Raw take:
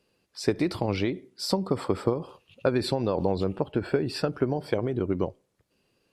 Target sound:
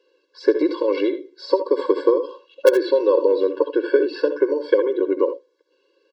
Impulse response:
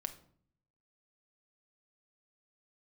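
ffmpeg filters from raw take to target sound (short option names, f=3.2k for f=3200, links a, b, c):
-filter_complex "[0:a]highpass=f=230:w=0.5412,highpass=f=230:w=1.3066,equalizer=f=240:t=q:w=4:g=-9,equalizer=f=540:t=q:w=4:g=6,equalizer=f=820:t=q:w=4:g=-7,equalizer=f=1.2k:t=q:w=4:g=5,equalizer=f=2.4k:t=q:w=4:g=-7,equalizer=f=4.4k:t=q:w=4:g=3,lowpass=f=5.4k:w=0.5412,lowpass=f=5.4k:w=1.3066,acrossover=split=3300[a][b];[b]acompressor=threshold=-52dB:ratio=4:attack=1:release=60[c];[a][c]amix=inputs=2:normalize=0,asplit=2[d][e];[e]aeval=exprs='(mod(3.35*val(0)+1,2)-1)/3.35':c=same,volume=-6dB[f];[d][f]amix=inputs=2:normalize=0,aecho=1:1:66|80:0.224|0.237,afftfilt=real='re*eq(mod(floor(b*sr/1024/290),2),1)':imag='im*eq(mod(floor(b*sr/1024/290),2),1)':win_size=1024:overlap=0.75,volume=5.5dB"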